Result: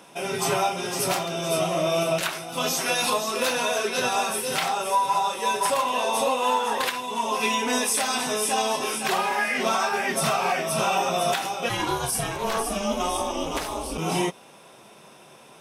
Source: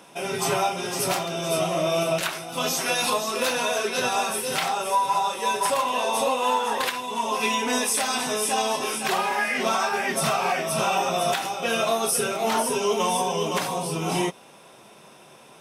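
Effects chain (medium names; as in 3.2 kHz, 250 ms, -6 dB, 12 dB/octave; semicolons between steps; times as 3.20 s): 11.68–13.97 s: ring modulator 350 Hz -> 110 Hz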